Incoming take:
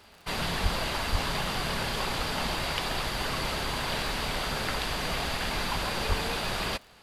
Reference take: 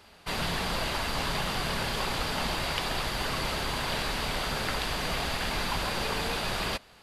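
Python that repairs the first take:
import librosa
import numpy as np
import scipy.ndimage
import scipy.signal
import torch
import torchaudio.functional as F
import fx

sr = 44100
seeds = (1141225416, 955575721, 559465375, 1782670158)

y = fx.fix_declick_ar(x, sr, threshold=6.5)
y = fx.highpass(y, sr, hz=140.0, slope=24, at=(0.62, 0.74), fade=0.02)
y = fx.highpass(y, sr, hz=140.0, slope=24, at=(1.11, 1.23), fade=0.02)
y = fx.highpass(y, sr, hz=140.0, slope=24, at=(6.08, 6.2), fade=0.02)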